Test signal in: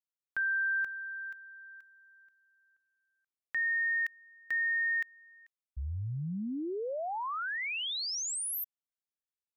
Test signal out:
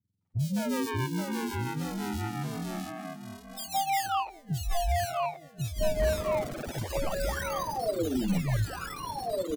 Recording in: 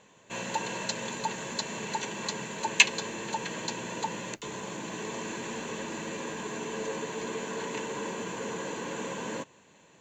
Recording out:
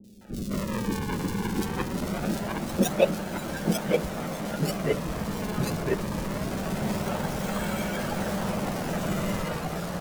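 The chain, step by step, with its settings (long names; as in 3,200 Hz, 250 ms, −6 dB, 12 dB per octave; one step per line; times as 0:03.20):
frequency axis turned over on the octave scale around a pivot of 1,200 Hz
high-pass filter 130 Hz
flanger 1.3 Hz, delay 9.4 ms, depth 2.8 ms, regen −3%
in parallel at +1 dB: downward compressor, threshold −43 dBFS
on the sum: sample-and-hold swept by an LFO 39×, swing 160% 0.23 Hz
three-band delay without the direct sound lows, highs, mids 40/210 ms, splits 390/3,500 Hz
delay with pitch and tempo change per echo 545 ms, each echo −2 semitones, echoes 3
speech leveller within 3 dB 2 s
dynamic equaliser 610 Hz, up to +6 dB, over −52 dBFS, Q 5.4
level +3 dB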